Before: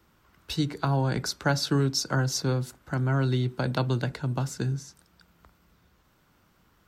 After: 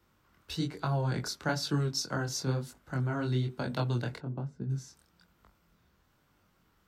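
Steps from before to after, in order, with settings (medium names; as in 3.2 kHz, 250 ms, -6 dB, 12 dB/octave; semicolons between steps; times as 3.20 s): 4.17–4.69 s: band-pass filter 460 Hz -> 110 Hz, Q 0.63; chorus 1.1 Hz, delay 20 ms, depth 6 ms; trim -2.5 dB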